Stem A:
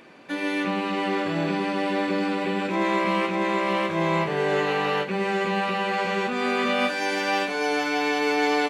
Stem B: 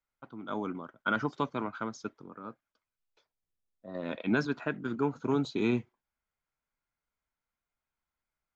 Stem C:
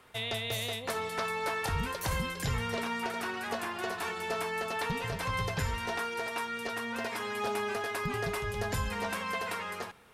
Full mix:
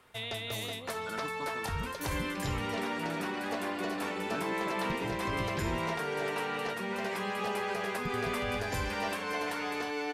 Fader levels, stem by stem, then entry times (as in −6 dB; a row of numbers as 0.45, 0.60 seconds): −12.0, −13.0, −3.0 decibels; 1.70, 0.00, 0.00 seconds